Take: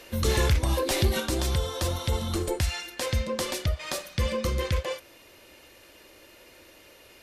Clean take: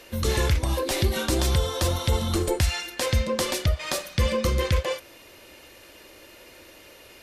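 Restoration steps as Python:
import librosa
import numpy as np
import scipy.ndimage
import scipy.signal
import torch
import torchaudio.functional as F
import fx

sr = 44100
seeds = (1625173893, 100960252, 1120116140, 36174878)

y = fx.fix_declip(x, sr, threshold_db=-15.5)
y = fx.gain(y, sr, db=fx.steps((0.0, 0.0), (1.2, 4.0)))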